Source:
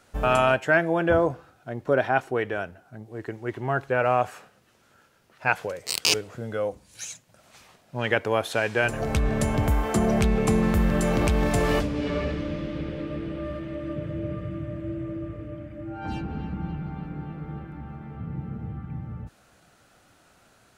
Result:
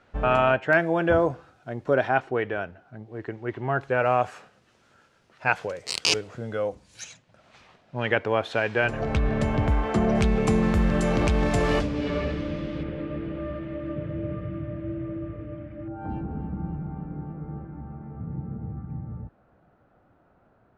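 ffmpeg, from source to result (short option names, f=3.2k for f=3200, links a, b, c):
-af "asetnsamples=n=441:p=0,asendcmd='0.73 lowpass f 7400;2.17 lowpass f 3700;3.81 lowpass f 6900;7.04 lowpass f 3800;10.15 lowpass f 7000;12.83 lowpass f 2800;15.88 lowpass f 1000',lowpass=2.9k"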